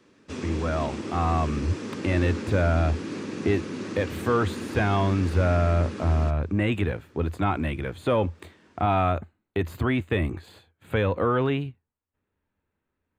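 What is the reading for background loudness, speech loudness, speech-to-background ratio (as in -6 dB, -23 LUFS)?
-35.0 LUFS, -26.5 LUFS, 8.5 dB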